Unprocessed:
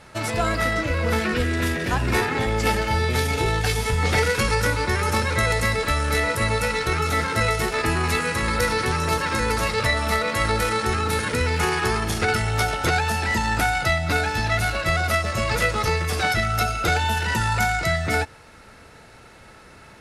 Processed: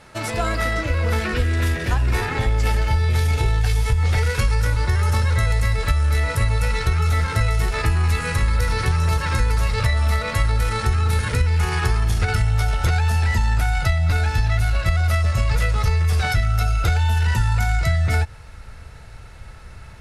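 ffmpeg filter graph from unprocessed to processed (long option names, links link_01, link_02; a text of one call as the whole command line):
ffmpeg -i in.wav -filter_complex "[0:a]asettb=1/sr,asplit=3[link_01][link_02][link_03];[link_01]atrim=end=4.754[link_04];[link_02]atrim=start=4.75:end=5.47,asetpts=PTS-STARTPTS,afade=type=in:duration=0.004:curve=qsin,afade=type=out:start_time=0.716:duration=0.004:curve=qsin,highpass=43,bandreject=frequency=2400:width=12[link_05];[link_03]atrim=start=5.466[link_06];[link_04][link_05]acrossfade=duration=0.004:curve1=hsin:curve2=qsin[link_07];[link_07][link_06]acrossfade=duration=0.004:curve1=qsin:curve2=hsin,asubboost=boost=9:cutoff=89,acompressor=threshold=-15dB:ratio=6" out.wav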